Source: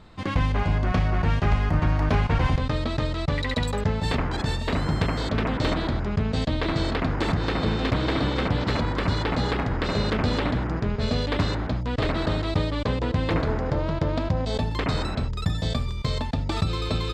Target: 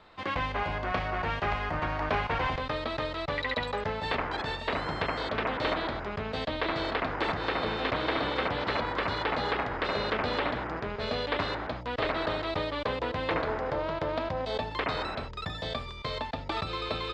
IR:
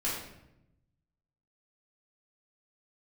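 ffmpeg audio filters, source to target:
-filter_complex "[0:a]acrossover=split=4700[s0][s1];[s1]acompressor=threshold=0.00447:ratio=4:attack=1:release=60[s2];[s0][s2]amix=inputs=2:normalize=0,acrossover=split=400 4700:gain=0.178 1 0.2[s3][s4][s5];[s3][s4][s5]amix=inputs=3:normalize=0"

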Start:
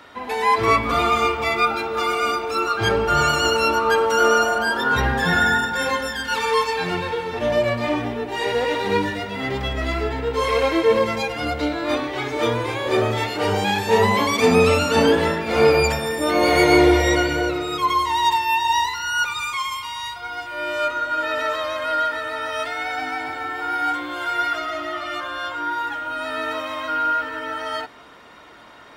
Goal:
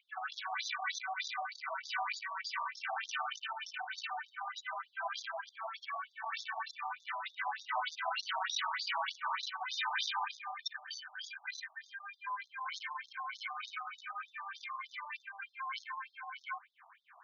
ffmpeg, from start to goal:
-filter_complex "[0:a]asetrate=74088,aresample=44100,afftfilt=real='re*lt(hypot(re,im),0.447)':imag='im*lt(hypot(re,im),0.447)':win_size=1024:overlap=0.75,acrossover=split=2100[s0][s1];[s1]acrusher=bits=3:mix=0:aa=0.5[s2];[s0][s2]amix=inputs=2:normalize=0,afftfilt=real='re*between(b*sr/1024,850*pow(4900/850,0.5+0.5*sin(2*PI*3.3*pts/sr))/1.41,850*pow(4900/850,0.5+0.5*sin(2*PI*3.3*pts/sr))*1.41)':imag='im*between(b*sr/1024,850*pow(4900/850,0.5+0.5*sin(2*PI*3.3*pts/sr))/1.41,850*pow(4900/850,0.5+0.5*sin(2*PI*3.3*pts/sr))*1.41)':win_size=1024:overlap=0.75,volume=0.473"

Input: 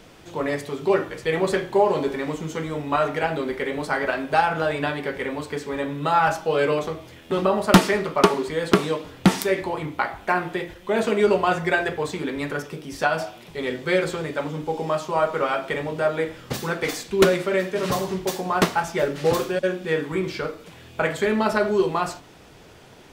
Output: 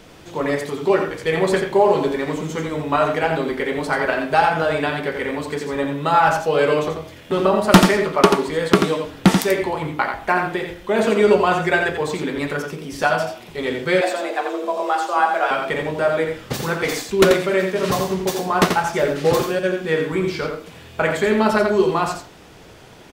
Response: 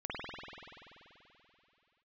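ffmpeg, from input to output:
-filter_complex "[0:a]aecho=1:1:86:0.501,asettb=1/sr,asplit=3[s0][s1][s2];[s0]atrim=end=14.014[s3];[s1]atrim=start=14.01:end=15.51,asetpts=PTS-STARTPTS,afade=t=in:d=0.004:c=qsin,afade=t=out:st=1.496:d=0.004:c=qsin,afreqshift=180[s4];[s2]atrim=start=15.506[s5];[s3][s4]acrossfade=d=0.004:c1=hsin:c2=qsin[s6];[s6][s5]acrossfade=d=0.004:c1=qsin:c2=hsin,volume=1.41"

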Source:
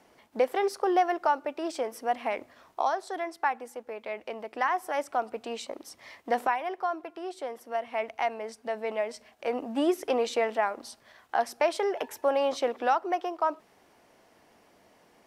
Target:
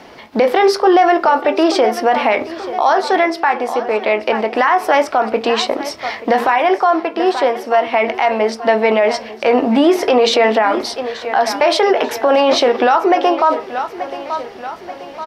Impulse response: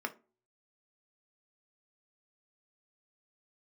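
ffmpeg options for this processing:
-filter_complex "[0:a]highshelf=f=6100:t=q:w=1.5:g=-9,aecho=1:1:882|1764|2646|3528:0.133|0.068|0.0347|0.0177,asplit=2[s0][s1];[1:a]atrim=start_sample=2205,adelay=19[s2];[s1][s2]afir=irnorm=-1:irlink=0,volume=0.266[s3];[s0][s3]amix=inputs=2:normalize=0,alimiter=level_in=15:limit=0.891:release=50:level=0:latency=1,volume=0.708"

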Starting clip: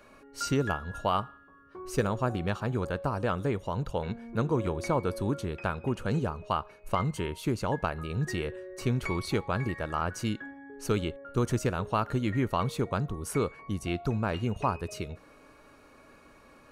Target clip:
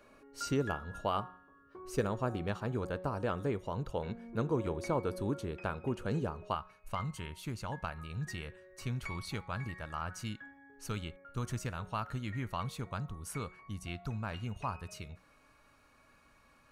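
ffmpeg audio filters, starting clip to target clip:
-af "bandreject=f=183:t=h:w=4,bandreject=f=366:t=h:w=4,bandreject=f=549:t=h:w=4,bandreject=f=732:t=h:w=4,bandreject=f=915:t=h:w=4,bandreject=f=1098:t=h:w=4,bandreject=f=1281:t=h:w=4,bandreject=f=1464:t=h:w=4,bandreject=f=1647:t=h:w=4,bandreject=f=1830:t=h:w=4,bandreject=f=2013:t=h:w=4,bandreject=f=2196:t=h:w=4,bandreject=f=2379:t=h:w=4,asetnsamples=n=441:p=0,asendcmd='6.55 equalizer g -10.5',equalizer=f=390:t=o:w=1.4:g=2.5,volume=0.501"

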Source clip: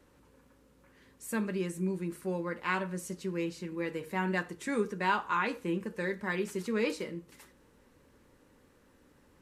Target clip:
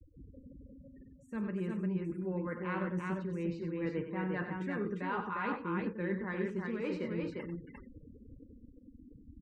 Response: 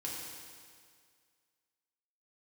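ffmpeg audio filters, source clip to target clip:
-af "adynamicequalizer=threshold=0.00708:dfrequency=1300:dqfactor=0.83:tfrequency=1300:tqfactor=0.83:attack=5:release=100:ratio=0.375:range=2.5:mode=boostabove:tftype=bell,afftfilt=real='re*gte(hypot(re,im),0.00447)':imag='im*gte(hypot(re,im),0.00447)':win_size=1024:overlap=0.75,lowpass=3500,lowshelf=f=370:g=12,areverse,acompressor=threshold=0.00794:ratio=6,areverse,aecho=1:1:48|95|351:0.133|0.376|0.708,volume=1.88"

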